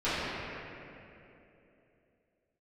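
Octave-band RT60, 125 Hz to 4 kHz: 3.2, 3.4, 3.5, 2.5, 2.5, 2.0 seconds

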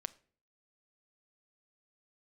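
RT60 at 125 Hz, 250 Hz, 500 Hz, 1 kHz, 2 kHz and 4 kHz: 0.60, 0.60, 0.50, 0.40, 0.40, 0.35 seconds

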